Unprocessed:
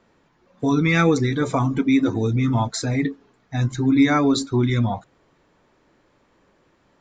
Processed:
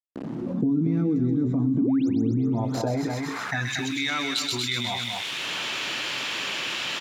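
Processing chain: tracing distortion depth 0.052 ms; recorder AGC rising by 45 dB/s; echo 0.232 s -9.5 dB; painted sound rise, 1.81–2.09, 210–7700 Hz -16 dBFS; graphic EQ 125/500/1000/2000/4000 Hz +7/-6/-6/-9/-3 dB; requantised 8-bit, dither none; on a send: thin delay 0.128 s, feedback 50%, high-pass 2600 Hz, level -4.5 dB; on the sum: band-pass sweep 260 Hz -> 2800 Hz, 2.22–3.98; low shelf 280 Hz -6.5 dB; fast leveller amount 70%; gain -2 dB

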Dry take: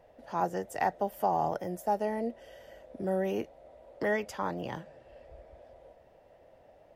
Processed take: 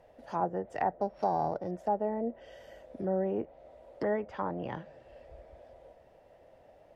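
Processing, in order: 1.01–1.71 sample sorter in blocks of 8 samples; treble ducked by the level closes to 1100 Hz, closed at -29 dBFS

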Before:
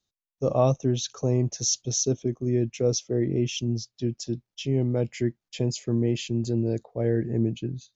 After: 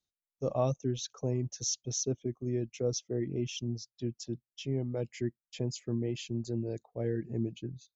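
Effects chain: reverb removal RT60 0.62 s; gain -7.5 dB

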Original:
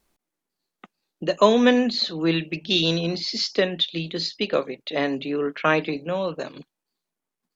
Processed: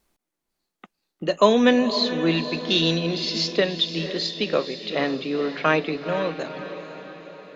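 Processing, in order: diffused feedback echo 0.489 s, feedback 54%, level -10.5 dB

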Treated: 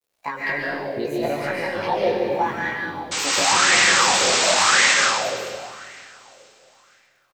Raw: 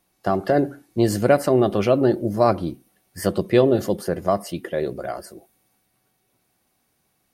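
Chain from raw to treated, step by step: trilling pitch shifter +6 st, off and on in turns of 0.209 s; band shelf 3000 Hz +11.5 dB; compressor 4:1, threshold -22 dBFS, peak gain reduction 10.5 dB; painted sound noise, 3.11–4.92, 750–8300 Hz -16 dBFS; chorus 0.6 Hz, delay 17.5 ms, depth 5.1 ms; bit-crush 10-bit; on a send: feedback echo 0.472 s, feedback 52%, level -21.5 dB; on the sum: digital reverb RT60 1.9 s, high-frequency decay 0.85×, pre-delay 0.1 s, DRR -4.5 dB; LFO bell 0.92 Hz 440–2000 Hz +12 dB; gain -6 dB

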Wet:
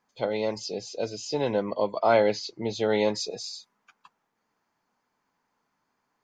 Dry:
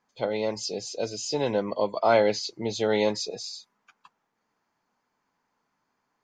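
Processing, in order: 0.58–3.14 air absorption 76 m

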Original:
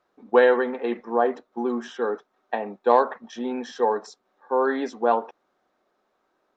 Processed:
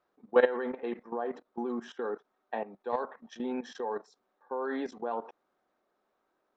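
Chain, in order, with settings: high shelf 3800 Hz -4 dB; level quantiser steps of 15 dB; gain -3 dB

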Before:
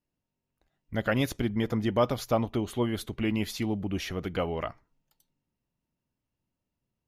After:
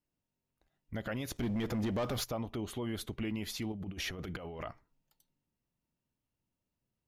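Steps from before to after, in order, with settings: limiter -25 dBFS, peak gain reduction 11.5 dB; 1.36–2.24 sample leveller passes 2; 3.72–4.65 negative-ratio compressor -37 dBFS, ratio -0.5; gain -3 dB

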